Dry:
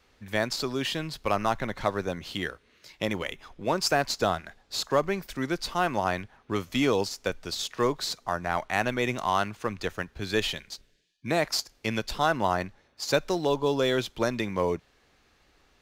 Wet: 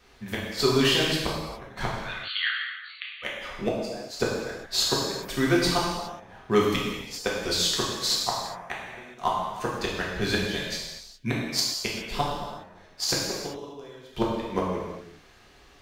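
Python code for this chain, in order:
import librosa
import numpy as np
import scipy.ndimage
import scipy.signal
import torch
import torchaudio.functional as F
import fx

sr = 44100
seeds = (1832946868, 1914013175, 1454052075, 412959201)

y = fx.gate_flip(x, sr, shuts_db=-16.0, range_db=-30)
y = fx.brickwall_bandpass(y, sr, low_hz=1100.0, high_hz=4600.0, at=(1.9, 3.22), fade=0.02)
y = fx.rev_gated(y, sr, seeds[0], gate_ms=440, shape='falling', drr_db=-5.0)
y = F.gain(torch.from_numpy(y), 3.0).numpy()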